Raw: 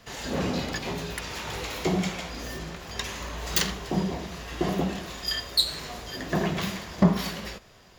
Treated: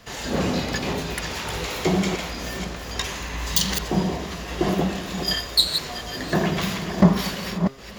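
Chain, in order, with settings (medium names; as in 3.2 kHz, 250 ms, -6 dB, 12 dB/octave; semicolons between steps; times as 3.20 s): chunks repeated in reverse 334 ms, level -7.5 dB; de-hum 134.5 Hz, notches 36; spectral replace 3.23–3.67 s, 260–2800 Hz before; trim +4.5 dB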